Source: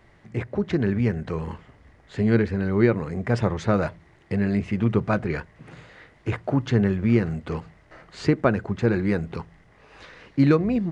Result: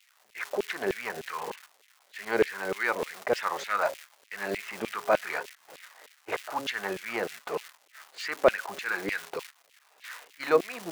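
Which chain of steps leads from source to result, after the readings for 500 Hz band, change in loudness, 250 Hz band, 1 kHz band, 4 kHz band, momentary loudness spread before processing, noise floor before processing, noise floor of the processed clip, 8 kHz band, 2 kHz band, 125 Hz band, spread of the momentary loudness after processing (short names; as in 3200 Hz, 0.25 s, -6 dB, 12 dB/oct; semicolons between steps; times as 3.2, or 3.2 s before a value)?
-3.0 dB, -6.5 dB, -18.0 dB, +1.5 dB, +3.0 dB, 12 LU, -56 dBFS, -64 dBFS, n/a, +2.0 dB, -27.5 dB, 20 LU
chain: de-hum 138.1 Hz, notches 5; crackle 500/s -31 dBFS; transient shaper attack -5 dB, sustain -1 dB; LFO high-pass saw down 3.3 Hz 440–2800 Hz; gate -42 dBFS, range -17 dB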